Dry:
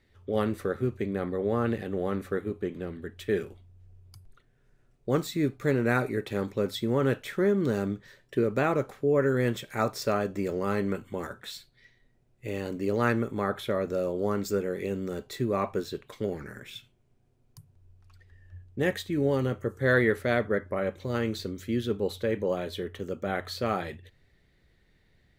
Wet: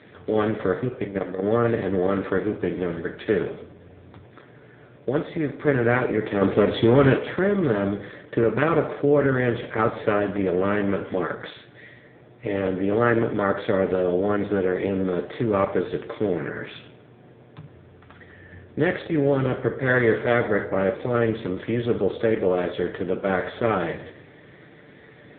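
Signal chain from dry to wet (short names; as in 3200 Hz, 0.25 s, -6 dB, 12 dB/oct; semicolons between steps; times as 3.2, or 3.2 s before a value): per-bin compression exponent 0.6; 0.74–1.42 level quantiser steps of 12 dB; 5.09–5.67 resonator 89 Hz, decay 0.65 s, harmonics all, mix 40%; 6.41–7.17 sample leveller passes 2; on a send at -5.5 dB: resonant low shelf 350 Hz -6.5 dB, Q 1.5 + reverb RT60 0.85 s, pre-delay 7 ms; on the sum: gain +2 dB; AMR-NB 5.9 kbps 8000 Hz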